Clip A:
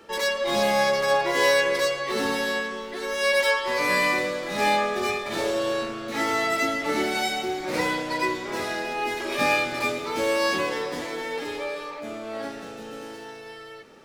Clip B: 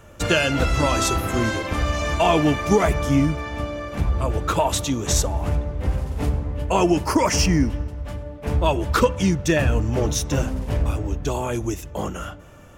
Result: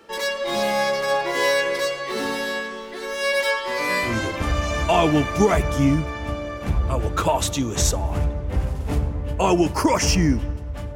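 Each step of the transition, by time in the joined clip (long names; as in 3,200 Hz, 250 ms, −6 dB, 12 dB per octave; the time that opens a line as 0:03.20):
clip A
0:04.09: continue with clip B from 0:01.40, crossfade 0.20 s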